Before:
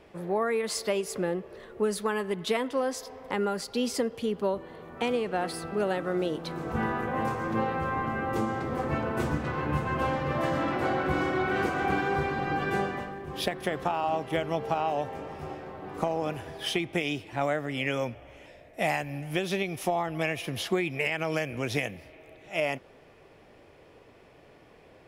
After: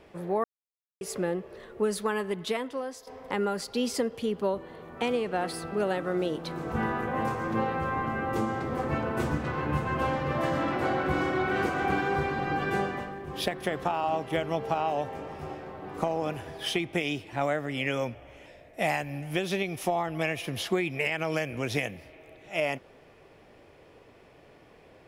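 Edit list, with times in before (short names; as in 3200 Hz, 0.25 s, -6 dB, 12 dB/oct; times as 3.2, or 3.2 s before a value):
0.44–1.01 mute
2.23–3.07 fade out, to -11 dB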